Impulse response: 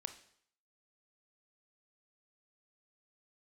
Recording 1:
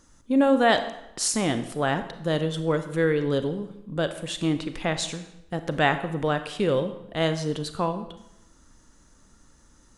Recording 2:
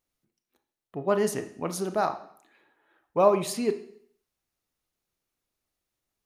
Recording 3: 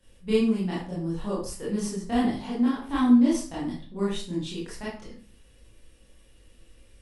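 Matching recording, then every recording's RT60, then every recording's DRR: 2; 0.85, 0.65, 0.40 s; 9.5, 8.5, -9.0 dB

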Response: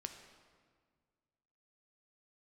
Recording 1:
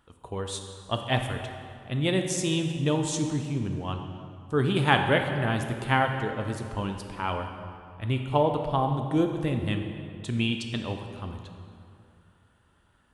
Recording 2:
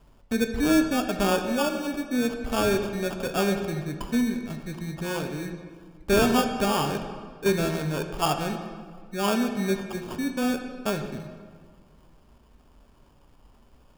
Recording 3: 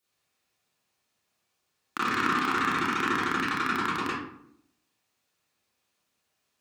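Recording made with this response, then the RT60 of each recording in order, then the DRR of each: 2; 2.5, 1.8, 0.70 s; 4.0, 5.5, -10.0 dB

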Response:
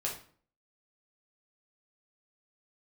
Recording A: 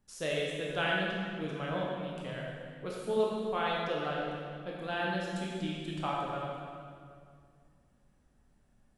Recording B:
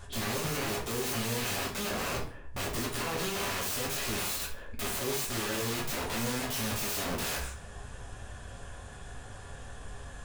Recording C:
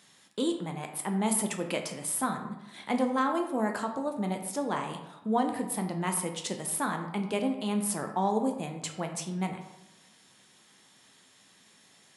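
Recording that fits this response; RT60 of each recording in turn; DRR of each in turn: B; 2.2, 0.45, 0.95 s; -4.0, -3.5, 4.0 dB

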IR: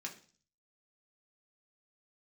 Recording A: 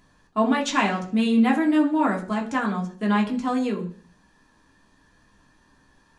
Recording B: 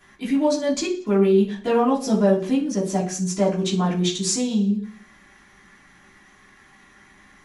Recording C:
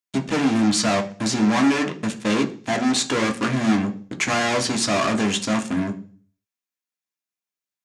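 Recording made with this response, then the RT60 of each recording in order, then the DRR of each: A; 0.40, 0.40, 0.40 s; -1.0, -9.5, 4.0 dB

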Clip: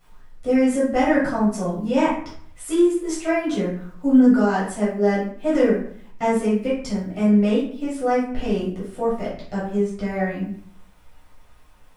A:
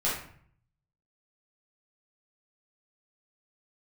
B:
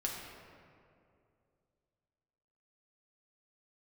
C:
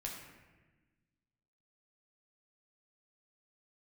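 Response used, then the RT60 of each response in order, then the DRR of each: A; 0.55, 2.5, 1.2 s; -8.5, -2.5, -2.0 dB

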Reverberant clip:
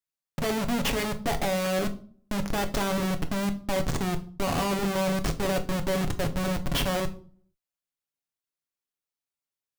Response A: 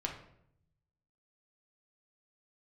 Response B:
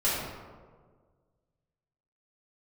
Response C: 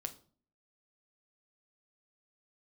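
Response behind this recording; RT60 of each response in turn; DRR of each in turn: C; 0.70, 1.6, 0.45 s; 0.0, -11.0, 6.0 dB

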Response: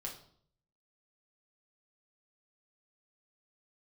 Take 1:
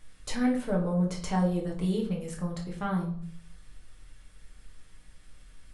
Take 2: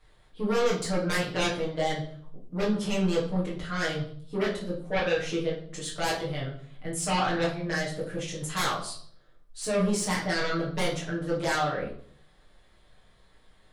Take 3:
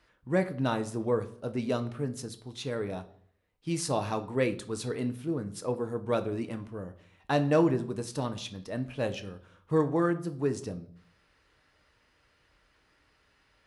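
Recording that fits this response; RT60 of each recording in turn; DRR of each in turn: 1; 0.60, 0.60, 0.60 s; -2.0, -8.0, 8.0 dB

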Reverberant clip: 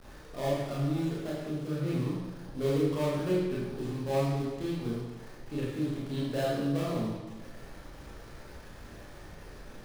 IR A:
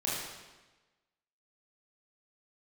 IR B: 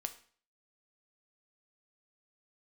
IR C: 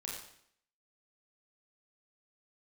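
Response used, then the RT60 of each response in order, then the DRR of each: A; 1.2, 0.45, 0.65 s; -7.5, 7.5, -3.5 dB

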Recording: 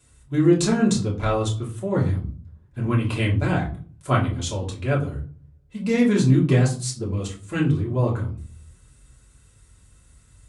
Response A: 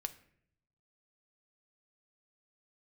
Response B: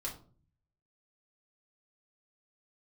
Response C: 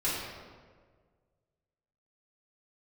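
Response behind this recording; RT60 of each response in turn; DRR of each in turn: B; 0.65, 0.45, 1.6 s; 8.5, -4.5, -10.5 dB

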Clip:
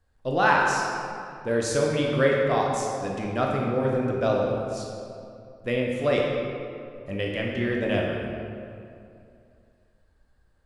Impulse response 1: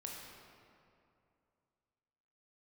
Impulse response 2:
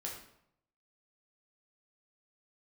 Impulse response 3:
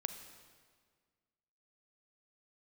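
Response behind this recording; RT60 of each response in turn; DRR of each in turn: 1; 2.6, 0.75, 1.7 s; -2.0, -2.5, 8.0 dB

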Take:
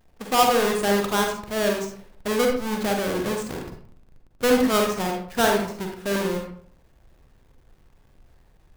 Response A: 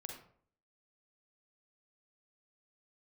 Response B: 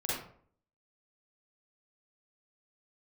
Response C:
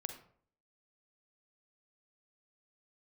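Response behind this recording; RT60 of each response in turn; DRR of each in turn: A; 0.55, 0.55, 0.55 s; 1.0, -8.0, 6.0 dB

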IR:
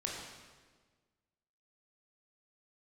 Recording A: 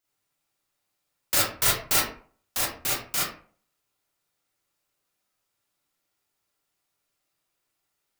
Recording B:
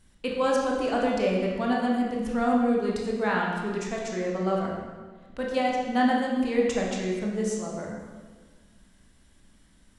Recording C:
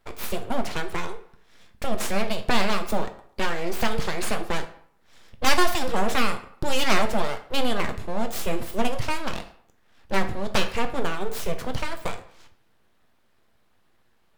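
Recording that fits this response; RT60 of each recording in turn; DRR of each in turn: B; 0.45, 1.5, 0.60 s; -6.5, -2.5, 6.0 dB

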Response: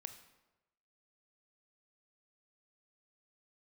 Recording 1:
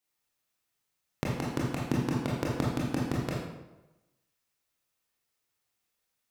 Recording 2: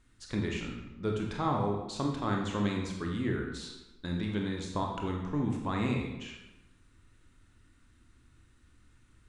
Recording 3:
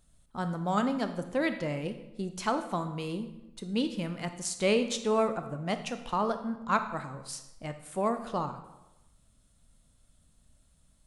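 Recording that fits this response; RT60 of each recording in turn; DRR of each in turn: 3; 1.1, 1.0, 1.0 s; -5.0, 0.0, 8.0 dB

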